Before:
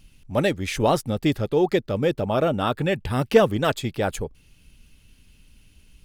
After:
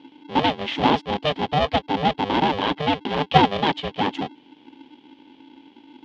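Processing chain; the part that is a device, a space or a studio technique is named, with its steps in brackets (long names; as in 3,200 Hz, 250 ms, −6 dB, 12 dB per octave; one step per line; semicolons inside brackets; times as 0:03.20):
ring modulator pedal into a guitar cabinet (ring modulator with a square carrier 300 Hz; loudspeaker in its box 95–4,100 Hz, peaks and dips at 110 Hz −4 dB, 270 Hz +9 dB, 840 Hz +7 dB, 1,400 Hz −6 dB, 3,200 Hz +9 dB)
level −1.5 dB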